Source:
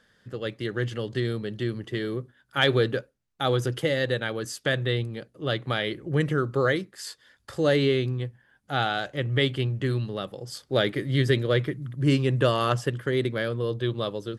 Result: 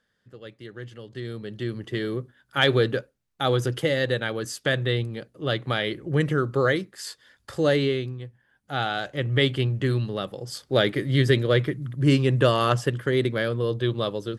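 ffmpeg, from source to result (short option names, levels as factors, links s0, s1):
-af "volume=3.55,afade=t=in:st=1.08:d=0.9:silence=0.251189,afade=t=out:st=7.63:d=0.56:silence=0.375837,afade=t=in:st=8.19:d=1.28:silence=0.334965"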